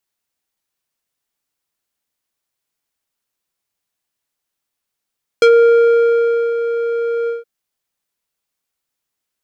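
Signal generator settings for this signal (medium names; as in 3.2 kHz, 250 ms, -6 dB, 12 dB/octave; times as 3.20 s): synth note square A#4 12 dB/octave, low-pass 1.1 kHz, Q 0.84, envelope 2.5 oct, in 0.08 s, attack 2 ms, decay 1.12 s, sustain -10.5 dB, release 0.16 s, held 1.86 s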